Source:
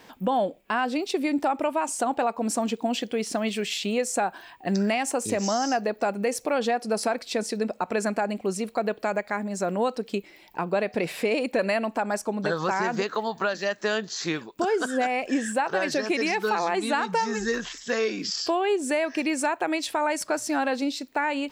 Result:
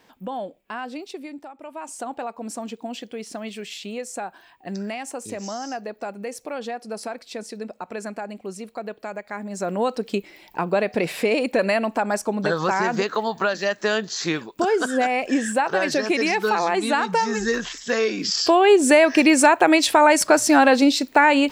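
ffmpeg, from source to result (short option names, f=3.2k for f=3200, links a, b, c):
-af "volume=23dB,afade=t=out:st=0.95:d=0.6:silence=0.251189,afade=t=in:st=1.55:d=0.39:silence=0.237137,afade=t=in:st=9.22:d=0.83:silence=0.316228,afade=t=in:st=18.17:d=0.63:silence=0.446684"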